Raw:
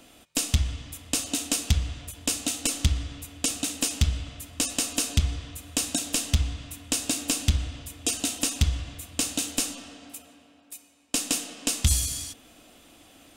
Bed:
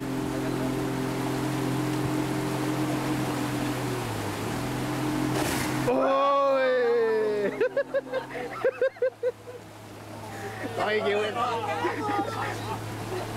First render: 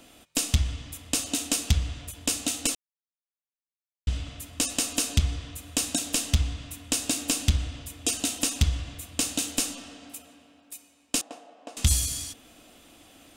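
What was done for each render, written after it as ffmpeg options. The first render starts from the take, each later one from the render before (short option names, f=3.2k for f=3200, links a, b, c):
-filter_complex "[0:a]asettb=1/sr,asplit=3[a][b][c];[a]atrim=end=11.214[d];[b]atrim=start=11.21:end=11.77,asetpts=PTS-STARTPTS,afade=t=in:d=0.004:c=qsin,afade=t=out:st=0.556:d=0.004:c=qsin,bandpass=f=710:t=q:w=2.5[e];[c]atrim=start=11.766[f];[d][e]acrossfade=d=0.004:c1=hsin:c2=qsin[g];[g][f]acrossfade=d=0.004:c1=qsin:c2=hsin,asplit=3[h][i][j];[h]atrim=end=2.75,asetpts=PTS-STARTPTS,afade=t=out:st=2.746:d=0.004:c=hsin[k];[i]atrim=start=2.75:end=4.07,asetpts=PTS-STARTPTS,volume=0[l];[j]atrim=start=4.07,asetpts=PTS-STARTPTS,afade=t=in:d=0.004:c=hsin[m];[k][l][m]concat=n=3:v=0:a=1"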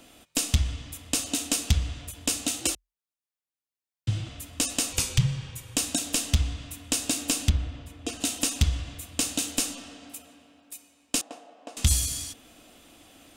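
-filter_complex "[0:a]asettb=1/sr,asplit=3[a][b][c];[a]atrim=end=2.604[d];[b]atrim=start=2.6:end=4.29,asetpts=PTS-STARTPTS,afade=t=in:d=0.004:c=qsin,afade=t=out:st=1.686:d=0.004:c=qsin,afreqshift=42[e];[c]atrim=start=4.286[f];[d][e]acrossfade=d=0.004:c1=hsin:c2=qsin[g];[g][f]acrossfade=d=0.004:c1=qsin:c2=hsin,asettb=1/sr,asplit=3[h][i][j];[h]atrim=end=4.924[k];[i]atrim=start=4.92:end=5.76,asetpts=PTS-STARTPTS,afade=t=in:d=0.004:c=qsin,afade=t=out:st=0.836:d=0.004:c=qsin,afreqshift=-200[l];[j]atrim=start=5.756[m];[k][l]acrossfade=d=0.004:c1=hsin:c2=qsin[n];[n][m]acrossfade=d=0.004:c1=qsin:c2=hsin,asplit=3[o][p][q];[o]afade=t=out:st=7.48:d=0.02[r];[p]lowpass=f=1.8k:p=1,afade=t=in:st=7.48:d=0.02,afade=t=out:st=8.2:d=0.02[s];[q]afade=t=in:st=8.2:d=0.02[t];[r][s][t]amix=inputs=3:normalize=0"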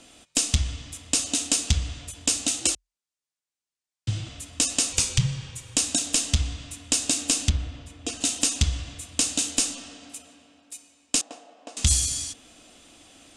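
-af "lowpass=f=8.5k:w=0.5412,lowpass=f=8.5k:w=1.3066,aemphasis=mode=production:type=cd"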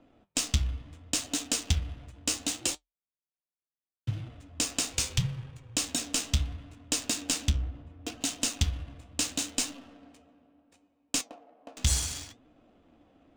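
-af "adynamicsmooth=sensitivity=7.5:basefreq=920,flanger=delay=6.4:depth=9.8:regen=64:speed=0.72:shape=triangular"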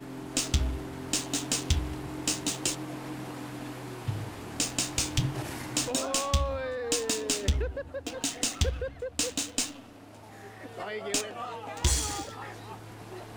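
-filter_complex "[1:a]volume=-10.5dB[a];[0:a][a]amix=inputs=2:normalize=0"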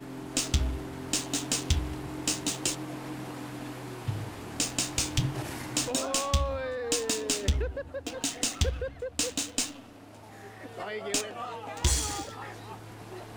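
-af anull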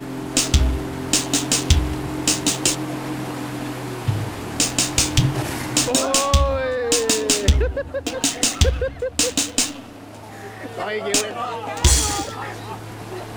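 -af "volume=11dB,alimiter=limit=-3dB:level=0:latency=1"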